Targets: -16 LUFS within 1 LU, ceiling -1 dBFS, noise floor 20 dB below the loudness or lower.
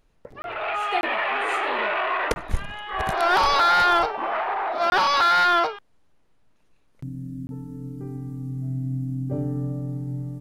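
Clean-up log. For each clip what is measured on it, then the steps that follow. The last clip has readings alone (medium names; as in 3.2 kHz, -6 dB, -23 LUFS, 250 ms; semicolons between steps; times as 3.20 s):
dropouts 5; longest dropout 21 ms; loudness -23.0 LUFS; peak level -8.5 dBFS; loudness target -16.0 LUFS
-> interpolate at 0.42/1.01/2.34/4.90/7.47 s, 21 ms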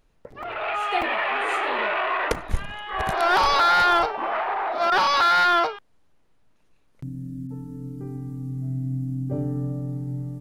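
dropouts 0; loudness -22.5 LUFS; peak level -8.5 dBFS; loudness target -16.0 LUFS
-> trim +6.5 dB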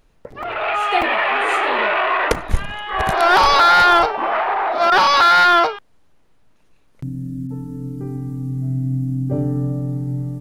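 loudness -16.5 LUFS; peak level -2.0 dBFS; noise floor -54 dBFS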